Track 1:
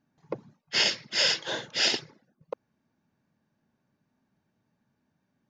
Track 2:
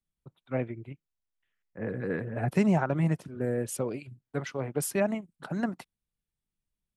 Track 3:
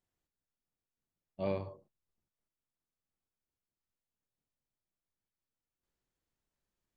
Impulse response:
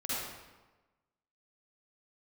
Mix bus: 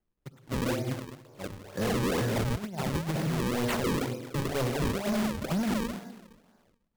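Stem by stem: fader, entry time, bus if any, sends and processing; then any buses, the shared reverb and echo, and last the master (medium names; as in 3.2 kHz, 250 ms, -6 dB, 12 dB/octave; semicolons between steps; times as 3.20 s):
-17.0 dB, 1.25 s, no send, spectral blur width 541 ms; high-order bell 780 Hz +15 dB 2.7 oct; upward compressor, threshold -36 dBFS
+1.5 dB, 0.00 s, send -12 dB, level rider gain up to 4 dB
-5.5 dB, 0.00 s, send -14 dB, square tremolo 2.9 Hz, depth 60%, duty 25%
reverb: on, RT60 1.2 s, pre-delay 43 ms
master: compressor with a negative ratio -24 dBFS, ratio -0.5; decimation with a swept rate 36×, swing 160% 2.1 Hz; overload inside the chain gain 25.5 dB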